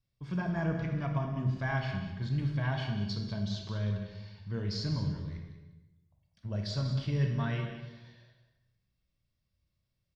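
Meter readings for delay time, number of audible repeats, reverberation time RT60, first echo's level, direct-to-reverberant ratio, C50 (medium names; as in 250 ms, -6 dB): 192 ms, 1, 1.0 s, -11.5 dB, 2.0 dB, 4.0 dB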